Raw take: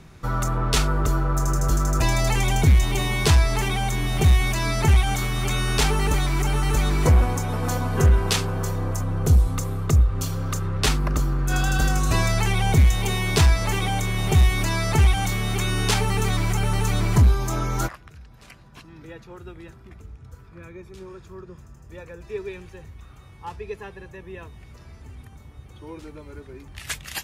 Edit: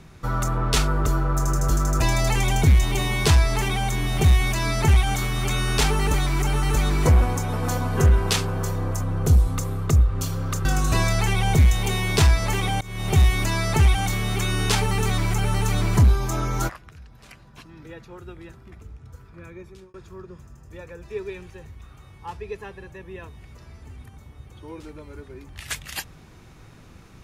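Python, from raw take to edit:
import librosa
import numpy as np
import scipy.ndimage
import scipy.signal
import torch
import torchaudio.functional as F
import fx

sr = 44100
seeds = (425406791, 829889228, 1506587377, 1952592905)

y = fx.edit(x, sr, fx.cut(start_s=10.65, length_s=1.19),
    fx.fade_in_from(start_s=14.0, length_s=0.35, floor_db=-21.0),
    fx.fade_out_span(start_s=20.77, length_s=0.36, curve='qsin'), tone=tone)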